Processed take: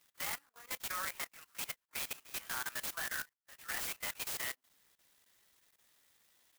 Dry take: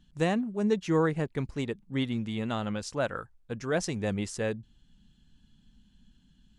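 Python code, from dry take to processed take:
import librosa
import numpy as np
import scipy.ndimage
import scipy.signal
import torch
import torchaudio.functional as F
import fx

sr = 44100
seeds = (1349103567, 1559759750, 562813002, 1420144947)

y = fx.pitch_bins(x, sr, semitones=2.5)
y = scipy.signal.sosfilt(scipy.signal.butter(4, 1300.0, 'highpass', fs=sr, output='sos'), y)
y = fx.level_steps(y, sr, step_db=16)
y = fx.clock_jitter(y, sr, seeds[0], jitter_ms=0.074)
y = F.gain(torch.from_numpy(y), 10.0).numpy()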